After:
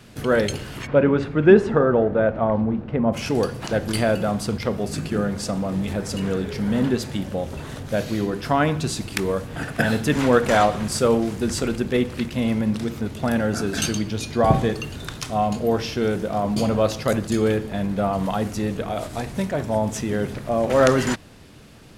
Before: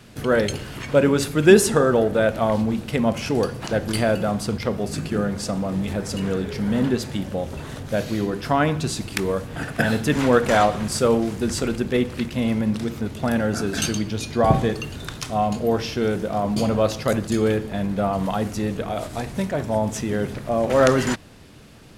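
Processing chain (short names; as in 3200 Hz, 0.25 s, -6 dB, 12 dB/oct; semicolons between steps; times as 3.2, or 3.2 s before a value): 0.86–3.12 LPF 2200 Hz -> 1200 Hz 12 dB/oct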